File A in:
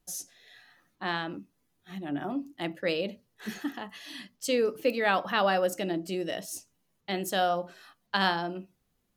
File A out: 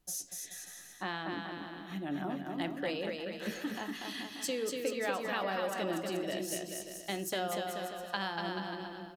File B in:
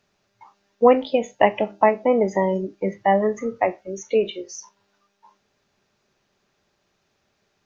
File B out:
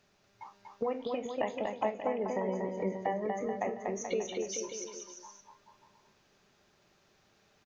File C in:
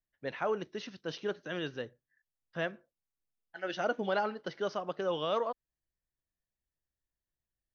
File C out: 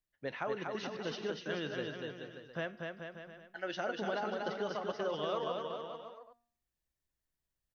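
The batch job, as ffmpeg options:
-filter_complex "[0:a]acompressor=threshold=-34dB:ratio=4,bandreject=frequency=236.6:width_type=h:width=4,bandreject=frequency=473.2:width_type=h:width=4,bandreject=frequency=709.8:width_type=h:width=4,bandreject=frequency=946.4:width_type=h:width=4,bandreject=frequency=1183:width_type=h:width=4,bandreject=frequency=1419.6:width_type=h:width=4,bandreject=frequency=1656.2:width_type=h:width=4,bandreject=frequency=1892.8:width_type=h:width=4,bandreject=frequency=2129.4:width_type=h:width=4,bandreject=frequency=2366:width_type=h:width=4,bandreject=frequency=2602.6:width_type=h:width=4,bandreject=frequency=2839.2:width_type=h:width=4,bandreject=frequency=3075.8:width_type=h:width=4,bandreject=frequency=3312.4:width_type=h:width=4,bandreject=frequency=3549:width_type=h:width=4,bandreject=frequency=3785.6:width_type=h:width=4,bandreject=frequency=4022.2:width_type=h:width=4,bandreject=frequency=4258.8:width_type=h:width=4,bandreject=frequency=4495.4:width_type=h:width=4,bandreject=frequency=4732:width_type=h:width=4,bandreject=frequency=4968.6:width_type=h:width=4,bandreject=frequency=5205.2:width_type=h:width=4,bandreject=frequency=5441.8:width_type=h:width=4,bandreject=frequency=5678.4:width_type=h:width=4,bandreject=frequency=5915:width_type=h:width=4,bandreject=frequency=6151.6:width_type=h:width=4,bandreject=frequency=6388.2:width_type=h:width=4,bandreject=frequency=6624.8:width_type=h:width=4,bandreject=frequency=6861.4:width_type=h:width=4,bandreject=frequency=7098:width_type=h:width=4,bandreject=frequency=7334.6:width_type=h:width=4,bandreject=frequency=7571.2:width_type=h:width=4,bandreject=frequency=7807.8:width_type=h:width=4,bandreject=frequency=8044.4:width_type=h:width=4,asplit=2[link_01][link_02];[link_02]aecho=0:1:240|432|585.6|708.5|806.8:0.631|0.398|0.251|0.158|0.1[link_03];[link_01][link_03]amix=inputs=2:normalize=0"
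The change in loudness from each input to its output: −6.5, −14.0, −3.0 LU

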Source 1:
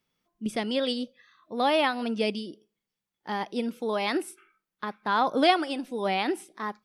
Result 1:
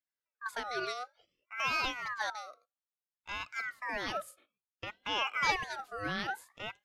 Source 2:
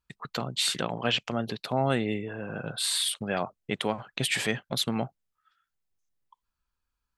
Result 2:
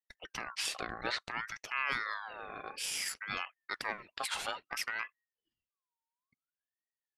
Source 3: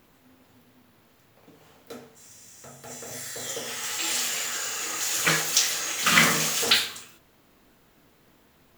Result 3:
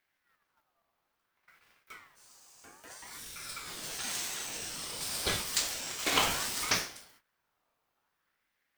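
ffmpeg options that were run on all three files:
-af "agate=range=-12dB:threshold=-54dB:ratio=16:detection=peak,aeval=exprs='val(0)*sin(2*PI*1400*n/s+1400*0.35/0.58*sin(2*PI*0.58*n/s))':channel_layout=same,volume=-6dB"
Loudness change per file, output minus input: −7.5, −8.0, −9.0 LU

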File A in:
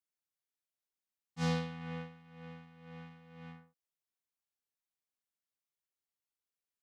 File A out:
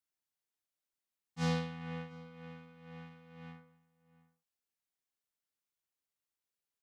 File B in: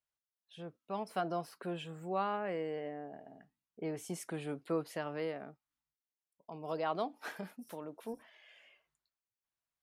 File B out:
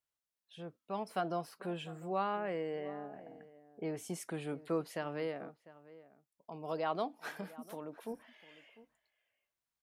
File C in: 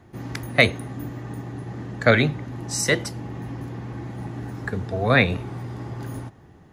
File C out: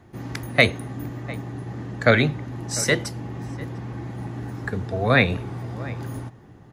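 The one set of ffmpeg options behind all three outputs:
-filter_complex "[0:a]asplit=2[link_01][link_02];[link_02]adelay=699.7,volume=-18dB,highshelf=frequency=4000:gain=-15.7[link_03];[link_01][link_03]amix=inputs=2:normalize=0"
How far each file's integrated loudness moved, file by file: 0.0, 0.0, 0.0 LU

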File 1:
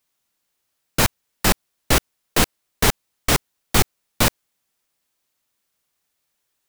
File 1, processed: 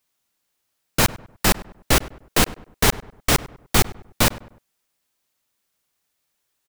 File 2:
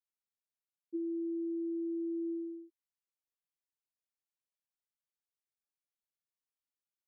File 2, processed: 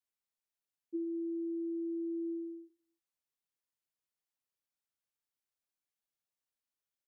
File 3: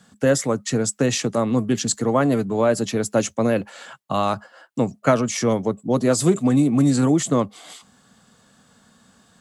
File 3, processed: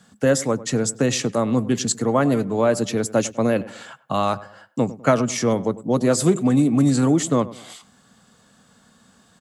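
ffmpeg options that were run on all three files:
-filter_complex "[0:a]asplit=2[link_01][link_02];[link_02]adelay=100,lowpass=frequency=1600:poles=1,volume=-17dB,asplit=2[link_03][link_04];[link_04]adelay=100,lowpass=frequency=1600:poles=1,volume=0.4,asplit=2[link_05][link_06];[link_06]adelay=100,lowpass=frequency=1600:poles=1,volume=0.4[link_07];[link_01][link_03][link_05][link_07]amix=inputs=4:normalize=0"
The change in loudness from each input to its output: 0.0, −1.0, 0.0 LU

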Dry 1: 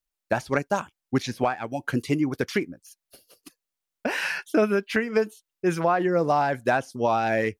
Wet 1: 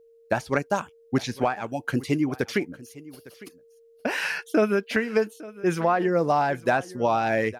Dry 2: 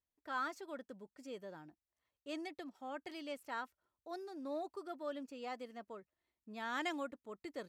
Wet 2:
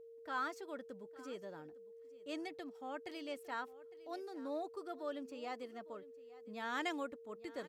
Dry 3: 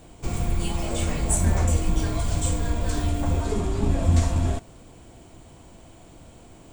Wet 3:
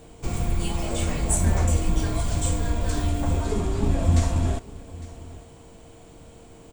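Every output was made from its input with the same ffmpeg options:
-af "aeval=exprs='val(0)+0.00224*sin(2*PI*460*n/s)':channel_layout=same,aecho=1:1:856:0.106"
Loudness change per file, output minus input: 0.0, 0.0, 0.0 LU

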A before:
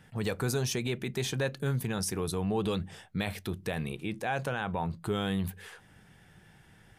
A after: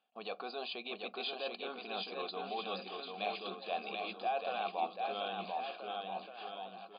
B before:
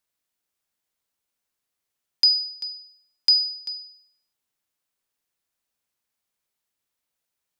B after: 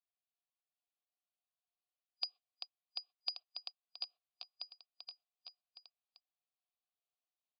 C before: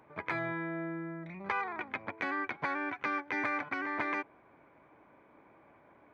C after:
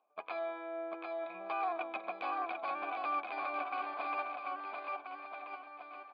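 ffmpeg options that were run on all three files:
-filter_complex "[0:a]afftfilt=real='re*between(b*sr/4096,180,4900)':imag='im*between(b*sr/4096,180,4900)':win_size=4096:overlap=0.75,agate=range=-21dB:threshold=-48dB:ratio=16:detection=peak,areverse,acompressor=threshold=-41dB:ratio=4,areverse,asplit=3[link_01][link_02][link_03];[link_01]bandpass=frequency=730:width_type=q:width=8,volume=0dB[link_04];[link_02]bandpass=frequency=1090:width_type=q:width=8,volume=-6dB[link_05];[link_03]bandpass=frequency=2440:width_type=q:width=8,volume=-9dB[link_06];[link_04][link_05][link_06]amix=inputs=3:normalize=0,aexciter=amount=4.2:drive=6.6:freq=3200,asplit=2[link_07][link_08];[link_08]aecho=0:1:740|1332|1806|2184|2488:0.631|0.398|0.251|0.158|0.1[link_09];[link_07][link_09]amix=inputs=2:normalize=0,volume=14.5dB"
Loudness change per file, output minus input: −7.0, −26.0, −3.5 LU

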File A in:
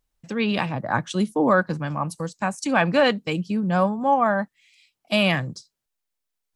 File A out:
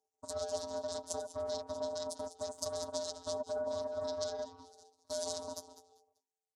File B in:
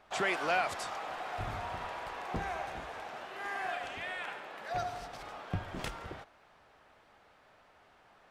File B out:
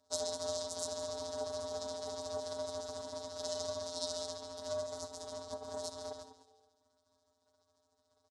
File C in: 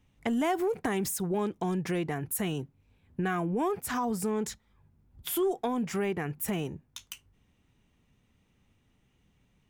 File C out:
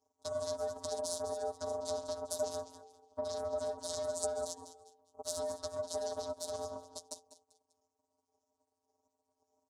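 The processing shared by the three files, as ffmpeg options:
-filter_complex "[0:a]afftfilt=real='re*pow(10,12/40*sin(2*PI*(1.4*log(max(b,1)*sr/1024/100)/log(2)-(1.8)*(pts-256)/sr)))':imag='im*pow(10,12/40*sin(2*PI*(1.4*log(max(b,1)*sr/1024/100)/log(2)-(1.8)*(pts-256)/sr)))':win_size=1024:overlap=0.75,aeval=exprs='val(0)*sin(2*PI*210*n/s)':channel_layout=same,acompressor=threshold=-36dB:ratio=8,asuperstop=centerf=4400:order=4:qfactor=3,flanger=delay=6.3:depth=7.9:regen=13:speed=0.81:shape=triangular,aeval=exprs='0.0376*(cos(1*acos(clip(val(0)/0.0376,-1,1)))-cos(1*PI/2))+0.00376*(cos(3*acos(clip(val(0)/0.0376,-1,1)))-cos(3*PI/2))+0.00133*(cos(4*acos(clip(val(0)/0.0376,-1,1)))-cos(4*PI/2))+0.00299*(cos(7*acos(clip(val(0)/0.0376,-1,1)))-cos(7*PI/2))+0.0106*(cos(8*acos(clip(val(0)/0.0376,-1,1)))-cos(8*PI/2))':channel_layout=same,alimiter=level_in=8.5dB:limit=-24dB:level=0:latency=1:release=159,volume=-8.5dB,firequalizer=gain_entry='entry(140,0);entry(210,5);entry(1700,-25);entry(3100,-21);entry(4400,10);entry(6700,11);entry(10000,5);entry(14000,-22)':delay=0.05:min_phase=1,asplit=2[link_01][link_02];[link_02]asplit=3[link_03][link_04][link_05];[link_03]adelay=197,afreqshift=-89,volume=-12.5dB[link_06];[link_04]adelay=394,afreqshift=-178,volume=-23dB[link_07];[link_05]adelay=591,afreqshift=-267,volume=-33.4dB[link_08];[link_06][link_07][link_08]amix=inputs=3:normalize=0[link_09];[link_01][link_09]amix=inputs=2:normalize=0,afftfilt=real='hypot(re,im)*cos(PI*b)':imag='0':win_size=1024:overlap=0.75,acrossover=split=200|3000[link_10][link_11][link_12];[link_11]acompressor=threshold=-53dB:ratio=6[link_13];[link_10][link_13][link_12]amix=inputs=3:normalize=0,aeval=exprs='val(0)*sin(2*PI*610*n/s)':channel_layout=same,volume=10dB"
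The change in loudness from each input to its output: −16.5, −3.0, −7.5 LU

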